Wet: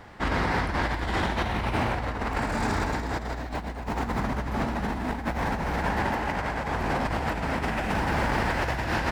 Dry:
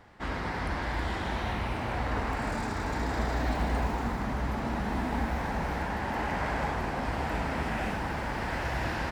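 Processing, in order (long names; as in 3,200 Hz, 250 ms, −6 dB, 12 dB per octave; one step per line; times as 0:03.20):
compressor whose output falls as the input rises −33 dBFS, ratio −0.5
level +6 dB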